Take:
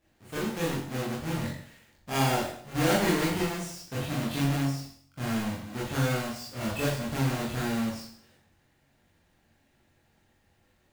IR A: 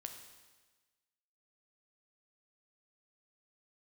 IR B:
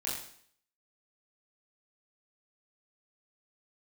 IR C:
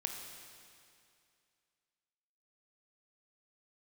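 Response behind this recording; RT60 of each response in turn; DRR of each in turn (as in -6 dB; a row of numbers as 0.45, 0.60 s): B; 1.3, 0.60, 2.4 s; 4.5, -7.5, 2.5 dB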